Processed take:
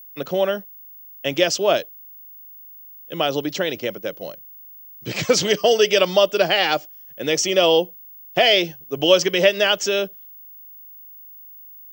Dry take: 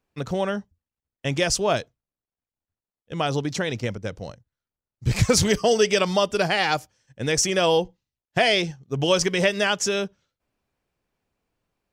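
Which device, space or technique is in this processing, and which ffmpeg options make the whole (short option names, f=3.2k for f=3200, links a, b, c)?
old television with a line whistle: -filter_complex "[0:a]asettb=1/sr,asplit=3[a][b][c];[a]atrim=end=7.284[d];[b]atrim=start=7.28:end=8.42,asetpts=PTS-STARTPTS,afade=t=in:d=0.004:c=qsin,afade=t=out:st=1.136:d=0.004:c=qsin,bandreject=f=1.6k:w=6.4[e];[c]atrim=start=8.416[f];[d][e]acrossfade=d=0.004:c1=hsin:c2=qsin[g];[g][f]acrossfade=d=0.004:c1=qsin:c2=hsin,highpass=f=180:w=0.5412,highpass=f=180:w=1.3066,equalizer=f=220:t=q:w=4:g=-7,equalizer=f=330:t=q:w=4:g=4,equalizer=f=580:t=q:w=4:g=6,equalizer=f=940:t=q:w=4:g=-3,equalizer=f=3k:t=q:w=4:g=7,lowpass=f=6.7k:w=0.5412,lowpass=f=6.7k:w=1.3066,aeval=exprs='val(0)+0.00891*sin(2*PI*15625*n/s)':c=same,volume=1.5dB"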